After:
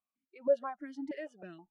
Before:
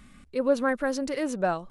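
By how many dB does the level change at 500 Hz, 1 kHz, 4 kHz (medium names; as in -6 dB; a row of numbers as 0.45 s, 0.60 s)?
-7.0 dB, -12.5 dB, under -15 dB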